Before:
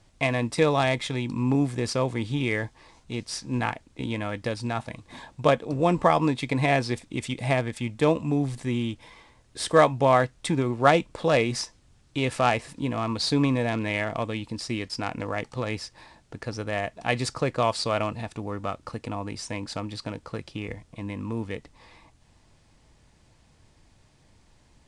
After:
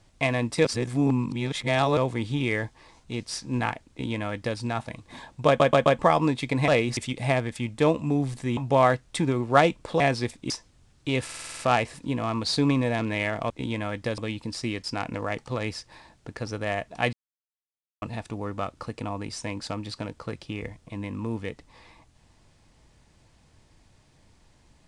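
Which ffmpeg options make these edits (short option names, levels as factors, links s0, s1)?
-filter_complex "[0:a]asplit=23[s0][s1][s2][s3][s4][s5][s6][s7][s8][s9][s10][s11][s12][s13][s14][s15][s16][s17][s18][s19][s20][s21][s22];[s0]atrim=end=0.652[s23];[s1]atrim=start=0.648:end=1.972,asetpts=PTS-STARTPTS,areverse[s24];[s2]atrim=start=1.968:end=5.602[s25];[s3]atrim=start=5.468:end=5.602[s26];[s4]atrim=start=5.468:end=5.602[s27];[s5]atrim=start=5.468:end=5.602[s28];[s6]atrim=start=5.988:end=6.682[s29];[s7]atrim=start=11.298:end=11.592[s30];[s8]atrim=start=7.178:end=8.782[s31];[s9]atrim=start=9.868:end=11.302[s32];[s10]atrim=start=6.678:end=7.182[s33];[s11]atrim=start=11.588:end=12.382[s34];[s12]atrim=start=12.328:end=12.382[s35];[s13]atrim=start=12.328:end=12.382[s36];[s14]atrim=start=12.328:end=12.382[s37];[s15]atrim=start=12.328:end=12.382[s38];[s16]atrim=start=12.328:end=12.382[s39];[s17]atrim=start=12.328:end=12.382[s40];[s18]atrim=start=12.328:end=14.242[s41];[s19]atrim=start=3.898:end=4.582[s42];[s20]atrim=start=14.238:end=17.19,asetpts=PTS-STARTPTS,afade=t=out:st=2.948:d=0.004:c=hsin[s43];[s21]atrim=start=17.19:end=18.08,asetpts=PTS-STARTPTS,volume=0[s44];[s22]atrim=start=18.08,asetpts=PTS-STARTPTS,afade=t=in:d=0.004:c=hsin[s45];[s23][s24]acrossfade=d=0.004:c1=hsin:c2=hsin[s46];[s46][s25]acrossfade=d=0.004:c1=hsin:c2=hsin[s47];[s47][s26]acrossfade=d=0.004:c1=hsin:c2=hsin[s48];[s48][s27]acrossfade=d=0.004:c1=hsin:c2=hsin[s49];[s49][s28]acrossfade=d=0.004:c1=hsin:c2=hsin[s50];[s50][s29]acrossfade=d=0.004:c1=hsin:c2=hsin[s51];[s51][s30]acrossfade=d=0.004:c1=hsin:c2=hsin[s52];[s52][s31]acrossfade=d=0.004:c1=hsin:c2=hsin[s53];[s53][s32]acrossfade=d=0.004:c1=hsin:c2=hsin[s54];[s54][s33]acrossfade=d=0.004:c1=hsin:c2=hsin[s55];[s55][s34]acrossfade=d=0.004:c1=hsin:c2=hsin[s56];[s56][s35]acrossfade=d=0.004:c1=hsin:c2=hsin[s57];[s57][s36]acrossfade=d=0.004:c1=hsin:c2=hsin[s58];[s58][s37]acrossfade=d=0.004:c1=hsin:c2=hsin[s59];[s59][s38]acrossfade=d=0.004:c1=hsin:c2=hsin[s60];[s60][s39]acrossfade=d=0.004:c1=hsin:c2=hsin[s61];[s61][s40]acrossfade=d=0.004:c1=hsin:c2=hsin[s62];[s62][s41]acrossfade=d=0.004:c1=hsin:c2=hsin[s63];[s63][s42]acrossfade=d=0.004:c1=hsin:c2=hsin[s64];[s43][s44][s45]concat=n=3:v=0:a=1[s65];[s64][s65]acrossfade=d=0.004:c1=hsin:c2=hsin"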